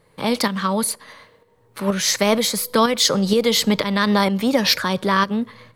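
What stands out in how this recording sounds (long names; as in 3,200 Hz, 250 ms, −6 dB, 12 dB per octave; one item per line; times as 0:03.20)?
tremolo saw up 2.1 Hz, depth 50%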